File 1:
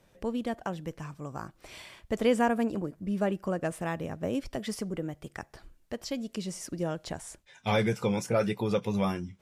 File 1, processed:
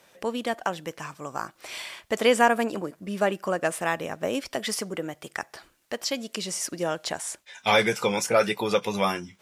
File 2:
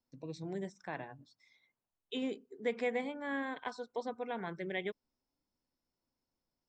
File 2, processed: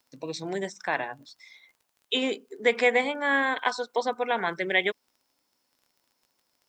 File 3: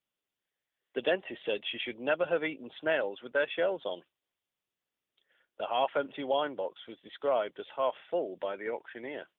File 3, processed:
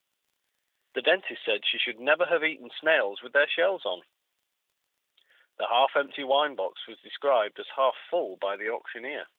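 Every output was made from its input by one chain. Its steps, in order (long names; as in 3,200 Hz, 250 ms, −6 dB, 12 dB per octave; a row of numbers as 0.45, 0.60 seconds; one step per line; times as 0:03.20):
high-pass filter 880 Hz 6 dB per octave
surface crackle 27 per second −66 dBFS
loudness normalisation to −27 LKFS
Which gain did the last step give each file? +11.0, +17.5, +10.0 decibels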